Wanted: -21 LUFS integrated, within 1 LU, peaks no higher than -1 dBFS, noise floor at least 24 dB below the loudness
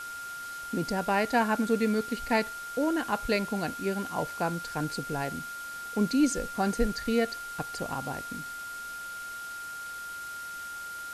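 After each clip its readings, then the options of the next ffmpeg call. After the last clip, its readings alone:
steady tone 1.4 kHz; tone level -37 dBFS; noise floor -40 dBFS; noise floor target -55 dBFS; loudness -31.0 LUFS; peak level -13.5 dBFS; loudness target -21.0 LUFS
-> -af "bandreject=f=1400:w=30"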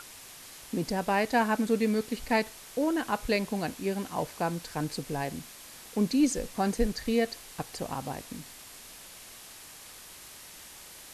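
steady tone not found; noise floor -48 dBFS; noise floor target -54 dBFS
-> -af "afftdn=nr=6:nf=-48"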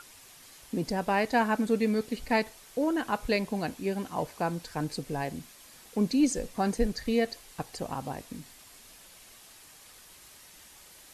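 noise floor -53 dBFS; noise floor target -55 dBFS
-> -af "afftdn=nr=6:nf=-53"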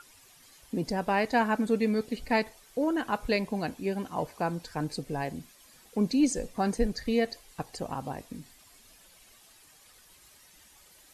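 noise floor -58 dBFS; loudness -30.5 LUFS; peak level -13.5 dBFS; loudness target -21.0 LUFS
-> -af "volume=2.99"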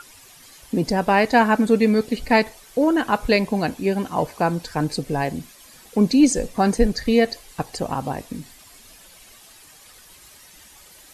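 loudness -21.0 LUFS; peak level -4.0 dBFS; noise floor -48 dBFS

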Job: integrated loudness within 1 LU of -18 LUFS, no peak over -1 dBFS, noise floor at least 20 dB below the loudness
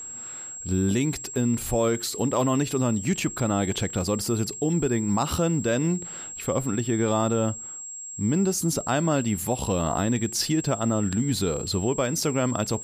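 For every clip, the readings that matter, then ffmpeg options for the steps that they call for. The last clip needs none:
steady tone 7.6 kHz; tone level -35 dBFS; loudness -25.5 LUFS; peak level -10.5 dBFS; loudness target -18.0 LUFS
-> -af "bandreject=f=7600:w=30"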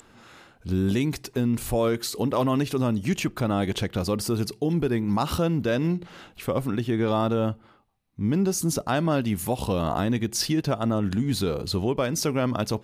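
steady tone not found; loudness -25.5 LUFS; peak level -11.5 dBFS; loudness target -18.0 LUFS
-> -af "volume=2.37"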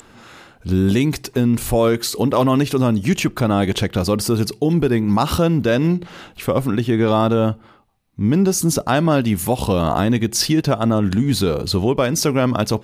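loudness -18.0 LUFS; peak level -4.0 dBFS; noise floor -48 dBFS

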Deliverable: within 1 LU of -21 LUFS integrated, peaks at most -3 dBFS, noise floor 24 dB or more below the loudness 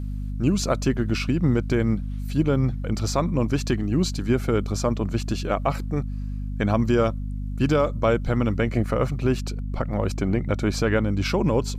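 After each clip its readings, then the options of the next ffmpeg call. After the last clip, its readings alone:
hum 50 Hz; highest harmonic 250 Hz; hum level -27 dBFS; loudness -24.0 LUFS; peak level -8.5 dBFS; loudness target -21.0 LUFS
-> -af "bandreject=f=50:t=h:w=6,bandreject=f=100:t=h:w=6,bandreject=f=150:t=h:w=6,bandreject=f=200:t=h:w=6,bandreject=f=250:t=h:w=6"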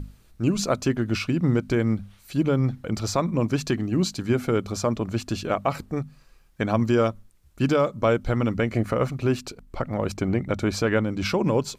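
hum not found; loudness -25.0 LUFS; peak level -9.5 dBFS; loudness target -21.0 LUFS
-> -af "volume=1.58"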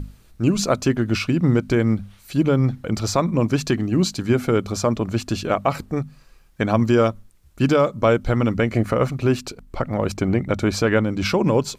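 loudness -21.0 LUFS; peak level -5.5 dBFS; noise floor -52 dBFS

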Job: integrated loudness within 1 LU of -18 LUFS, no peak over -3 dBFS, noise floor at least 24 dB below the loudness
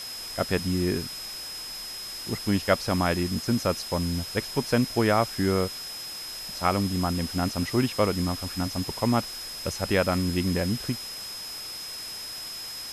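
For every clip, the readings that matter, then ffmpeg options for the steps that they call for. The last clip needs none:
steady tone 5.1 kHz; tone level -36 dBFS; noise floor -37 dBFS; noise floor target -52 dBFS; loudness -27.5 LUFS; peak level -8.0 dBFS; loudness target -18.0 LUFS
-> -af "bandreject=f=5100:w=30"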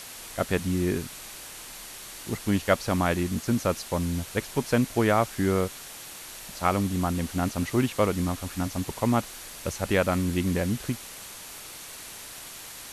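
steady tone not found; noise floor -42 dBFS; noise floor target -51 dBFS
-> -af "afftdn=nr=9:nf=-42"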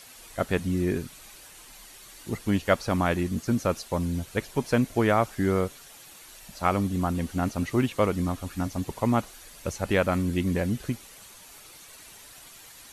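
noise floor -49 dBFS; noise floor target -52 dBFS
-> -af "afftdn=nr=6:nf=-49"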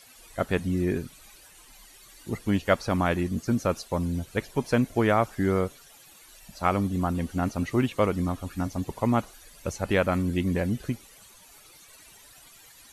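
noise floor -53 dBFS; loudness -27.5 LUFS; peak level -8.5 dBFS; loudness target -18.0 LUFS
-> -af "volume=2.99,alimiter=limit=0.708:level=0:latency=1"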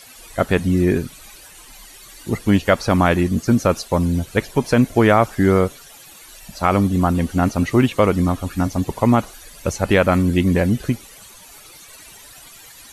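loudness -18.5 LUFS; peak level -3.0 dBFS; noise floor -43 dBFS

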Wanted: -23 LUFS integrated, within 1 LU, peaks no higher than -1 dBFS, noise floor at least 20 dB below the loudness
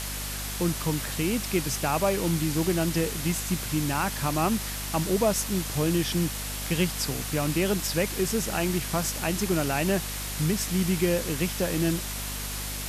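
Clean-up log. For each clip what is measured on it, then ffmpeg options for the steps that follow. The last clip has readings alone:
hum 50 Hz; highest harmonic 250 Hz; hum level -35 dBFS; noise floor -33 dBFS; noise floor target -47 dBFS; loudness -27.0 LUFS; peak level -11.5 dBFS; loudness target -23.0 LUFS
-> -af "bandreject=f=50:t=h:w=6,bandreject=f=100:t=h:w=6,bandreject=f=150:t=h:w=6,bandreject=f=200:t=h:w=6,bandreject=f=250:t=h:w=6"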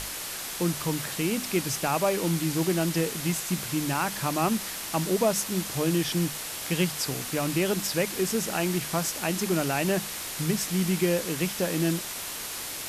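hum not found; noise floor -36 dBFS; noise floor target -48 dBFS
-> -af "afftdn=nr=12:nf=-36"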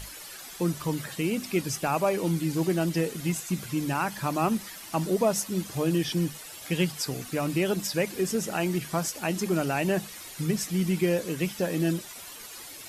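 noise floor -43 dBFS; noise floor target -48 dBFS
-> -af "afftdn=nr=6:nf=-43"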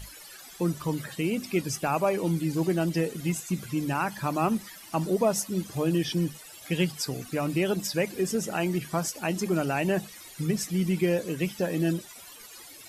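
noise floor -47 dBFS; noise floor target -49 dBFS
-> -af "afftdn=nr=6:nf=-47"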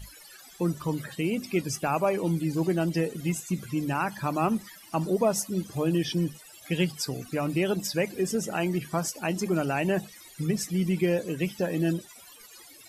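noise floor -50 dBFS; loudness -28.5 LUFS; peak level -13.0 dBFS; loudness target -23.0 LUFS
-> -af "volume=1.88"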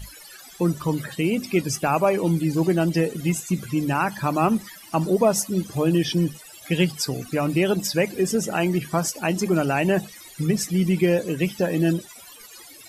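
loudness -23.0 LUFS; peak level -7.5 dBFS; noise floor -45 dBFS

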